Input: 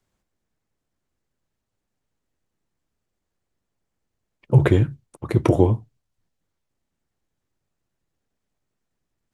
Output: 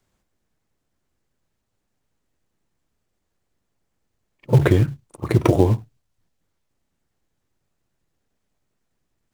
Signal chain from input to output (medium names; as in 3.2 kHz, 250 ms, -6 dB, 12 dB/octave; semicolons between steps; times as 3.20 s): pre-echo 42 ms -19.5 dB; in parallel at -4 dB: short-mantissa float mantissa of 2-bit; on the sum: compression 3:1, threshold -11 dBFS, peak gain reduction 6 dB